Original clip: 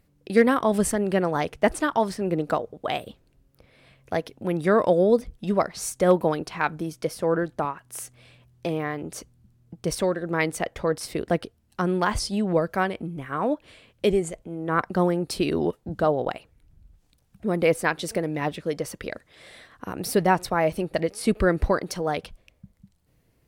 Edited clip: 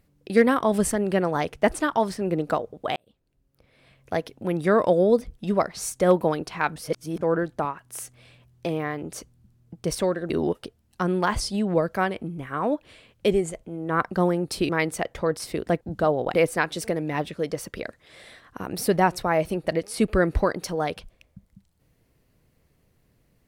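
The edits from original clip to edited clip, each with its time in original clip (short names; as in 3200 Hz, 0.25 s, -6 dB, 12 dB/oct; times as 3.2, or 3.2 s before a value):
2.96–4.13 fade in
6.76–7.21 reverse
10.3–11.42 swap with 15.48–15.81
16.34–17.61 cut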